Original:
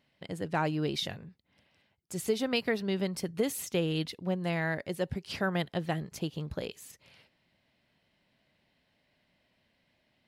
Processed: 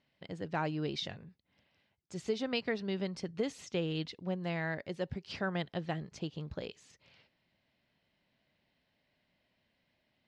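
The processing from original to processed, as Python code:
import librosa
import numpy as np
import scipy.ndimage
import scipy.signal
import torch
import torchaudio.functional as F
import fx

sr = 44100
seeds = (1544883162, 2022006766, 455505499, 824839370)

y = scipy.signal.sosfilt(scipy.signal.butter(4, 6300.0, 'lowpass', fs=sr, output='sos'), x)
y = y * 10.0 ** (-4.5 / 20.0)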